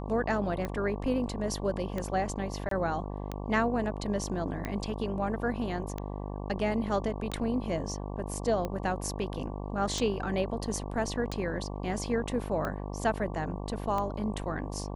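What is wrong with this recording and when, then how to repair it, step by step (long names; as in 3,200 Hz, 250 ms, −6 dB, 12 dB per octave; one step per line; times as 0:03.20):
mains buzz 50 Hz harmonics 23 −37 dBFS
scratch tick 45 rpm −20 dBFS
0:02.69–0:02.71: drop-out 23 ms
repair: click removal
hum removal 50 Hz, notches 23
repair the gap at 0:02.69, 23 ms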